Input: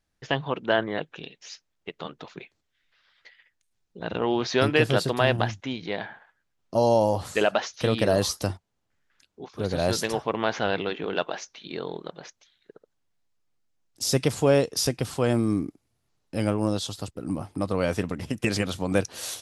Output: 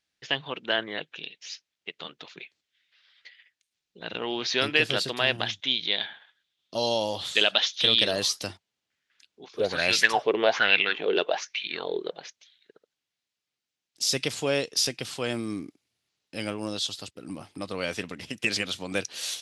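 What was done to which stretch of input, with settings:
5.46–8.11 s: peaking EQ 3.5 kHz +14.5 dB 0.4 oct
9.51–12.20 s: sweeping bell 1.2 Hz 380–2500 Hz +17 dB
whole clip: frequency weighting D; trim -6.5 dB

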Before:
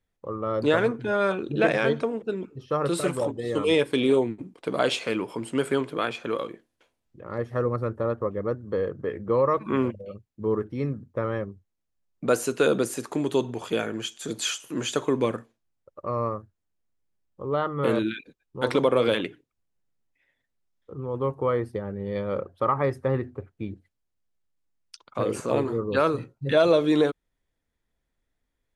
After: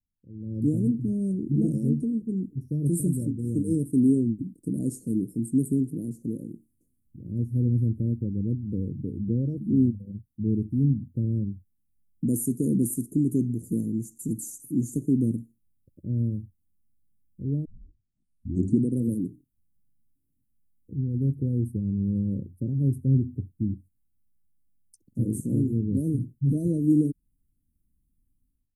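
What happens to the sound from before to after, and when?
17.65 s: tape start 1.30 s
whole clip: inverse Chebyshev band-stop 1–3.4 kHz, stop band 70 dB; high-order bell 830 Hz -8.5 dB 2.7 oct; level rider gain up to 16.5 dB; trim -8 dB

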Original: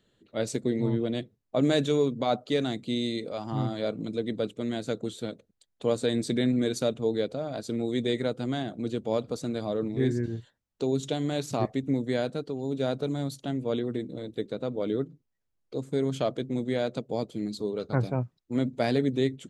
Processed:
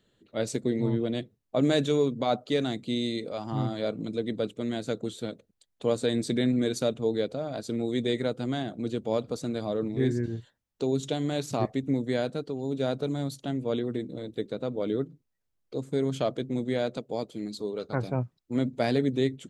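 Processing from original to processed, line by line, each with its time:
16.97–18.08 s: bass shelf 220 Hz -7 dB

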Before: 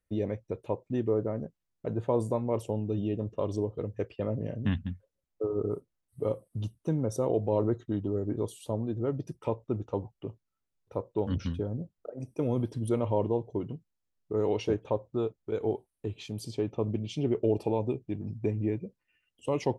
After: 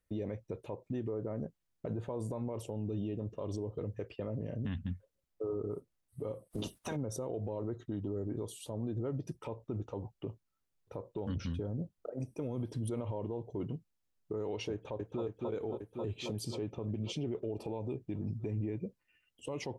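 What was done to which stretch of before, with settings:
6.50–6.95 s: spectral peaks clipped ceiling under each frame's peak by 27 dB
14.72–15.23 s: echo throw 270 ms, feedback 75%, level -7 dB
whole clip: compression 2.5:1, threshold -30 dBFS; peak limiter -29.5 dBFS; trim +1 dB

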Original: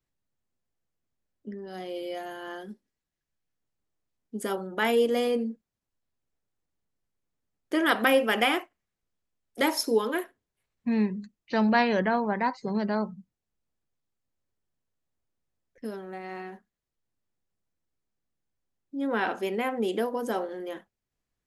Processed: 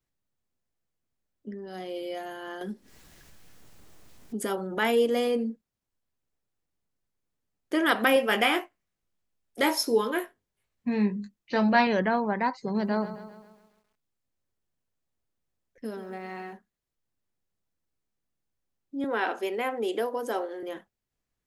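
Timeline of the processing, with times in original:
2.61–5.50 s: upward compressor, threshold -26 dBFS
8.14–11.87 s: doubling 20 ms -6.5 dB
12.62–16.53 s: bit-crushed delay 133 ms, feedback 55%, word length 10-bit, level -12 dB
19.04–20.63 s: high-pass 280 Hz 24 dB/octave

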